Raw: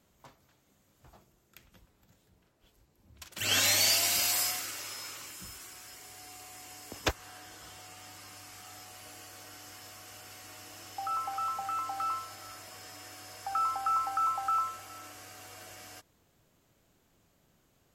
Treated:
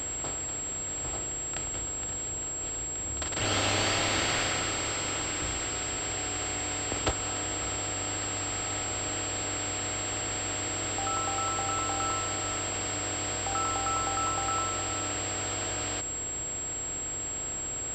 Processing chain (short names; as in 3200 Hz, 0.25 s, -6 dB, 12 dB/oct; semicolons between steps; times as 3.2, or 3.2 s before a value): per-bin compression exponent 0.4; bell 2100 Hz -9 dB 1.9 oct; pulse-width modulation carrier 7600 Hz; gain +1.5 dB